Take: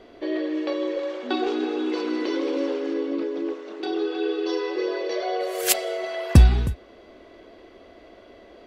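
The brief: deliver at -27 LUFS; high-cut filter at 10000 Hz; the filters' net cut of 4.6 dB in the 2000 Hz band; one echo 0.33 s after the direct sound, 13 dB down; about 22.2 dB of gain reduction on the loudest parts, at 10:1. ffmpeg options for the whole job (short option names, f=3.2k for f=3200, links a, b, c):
-af "lowpass=10k,equalizer=f=2k:t=o:g=-6,acompressor=threshold=-31dB:ratio=10,aecho=1:1:330:0.224,volume=8dB"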